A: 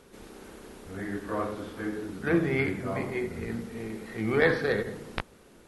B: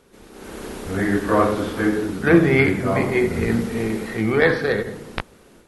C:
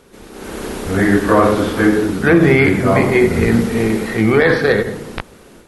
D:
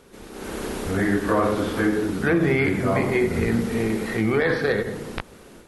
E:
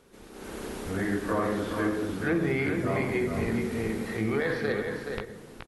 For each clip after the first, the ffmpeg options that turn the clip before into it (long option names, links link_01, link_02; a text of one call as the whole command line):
ffmpeg -i in.wav -af "dynaudnorm=framelen=310:gausssize=3:maxgain=15.5dB,volume=-1dB" out.wav
ffmpeg -i in.wav -af "alimiter=level_in=8.5dB:limit=-1dB:release=50:level=0:latency=1,volume=-1dB" out.wav
ffmpeg -i in.wav -af "acompressor=threshold=-23dB:ratio=1.5,volume=-3.5dB" out.wav
ffmpeg -i in.wav -af "aecho=1:1:424:0.473,volume=-7.5dB" out.wav